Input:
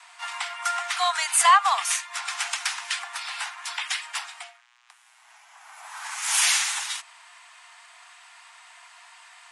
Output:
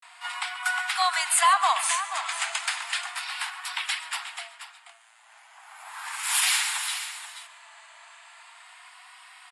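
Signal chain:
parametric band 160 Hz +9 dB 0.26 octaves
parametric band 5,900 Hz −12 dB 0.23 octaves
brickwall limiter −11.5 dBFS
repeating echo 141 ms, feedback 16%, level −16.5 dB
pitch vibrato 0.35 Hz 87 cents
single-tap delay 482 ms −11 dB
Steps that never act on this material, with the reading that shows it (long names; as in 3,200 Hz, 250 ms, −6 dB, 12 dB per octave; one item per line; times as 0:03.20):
parametric band 160 Hz: nothing at its input below 600 Hz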